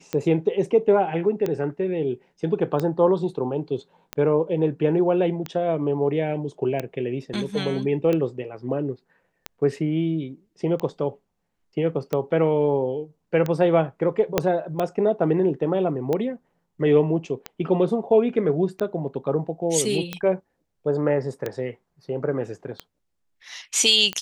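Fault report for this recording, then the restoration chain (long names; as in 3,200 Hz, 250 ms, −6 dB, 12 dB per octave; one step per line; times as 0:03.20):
scratch tick 45 rpm −13 dBFS
0:14.38: click −4 dBFS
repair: click removal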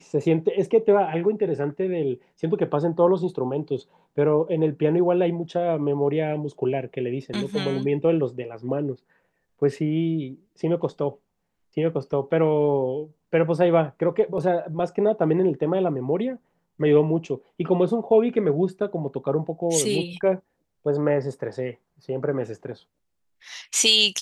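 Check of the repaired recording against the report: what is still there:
0:14.38: click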